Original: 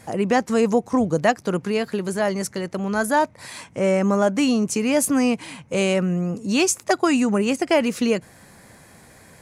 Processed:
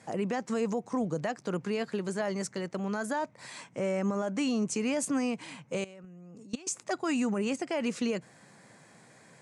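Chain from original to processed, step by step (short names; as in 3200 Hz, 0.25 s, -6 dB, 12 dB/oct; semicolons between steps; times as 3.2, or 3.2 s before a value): elliptic band-pass 130–8400 Hz, stop band 50 dB; limiter -15 dBFS, peak gain reduction 10 dB; 5.84–6.67 level quantiser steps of 21 dB; gain -7 dB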